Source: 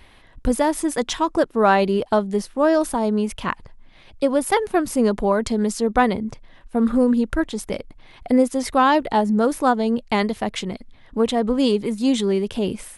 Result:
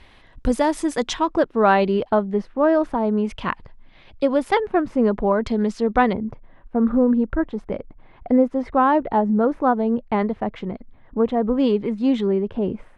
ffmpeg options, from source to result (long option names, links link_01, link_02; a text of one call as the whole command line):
ffmpeg -i in.wav -af "asetnsamples=nb_out_samples=441:pad=0,asendcmd='1.14 lowpass f 3600;2.1 lowpass f 2000;3.25 lowpass f 4000;4.6 lowpass f 1900;5.45 lowpass f 3300;6.13 lowpass f 1400;11.57 lowpass f 2200;12.27 lowpass f 1300',lowpass=7000" out.wav